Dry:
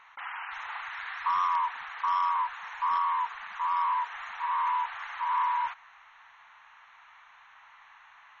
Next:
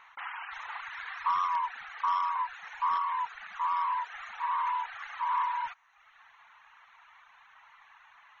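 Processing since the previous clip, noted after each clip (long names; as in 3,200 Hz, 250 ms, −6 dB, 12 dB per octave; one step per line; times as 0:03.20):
reverb reduction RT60 0.93 s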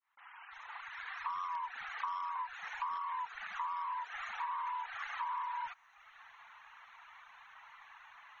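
fade in at the beginning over 1.93 s
downward compressor 8 to 1, threshold −37 dBFS, peak gain reduction 12 dB
level +1 dB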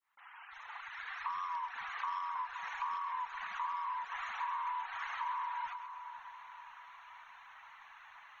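echo with a time of its own for lows and highs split 1,400 Hz, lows 523 ms, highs 134 ms, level −9 dB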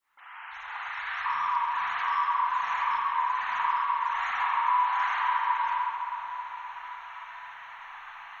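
convolution reverb RT60 1.9 s, pre-delay 35 ms, DRR −4 dB
level +6 dB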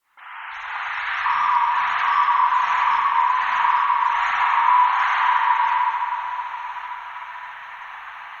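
feedback echo with a high-pass in the loop 236 ms, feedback 43%, high-pass 1,100 Hz, level −9.5 dB
level +8.5 dB
Opus 48 kbit/s 48,000 Hz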